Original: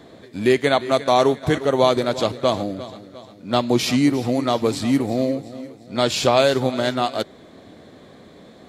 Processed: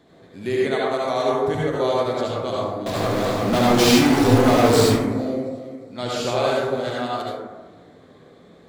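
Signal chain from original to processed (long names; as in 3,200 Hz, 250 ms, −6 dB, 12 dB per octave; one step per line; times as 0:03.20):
0:02.86–0:04.86: power curve on the samples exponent 0.35
convolution reverb RT60 1.2 s, pre-delay 62 ms, DRR −5.5 dB
level −10.5 dB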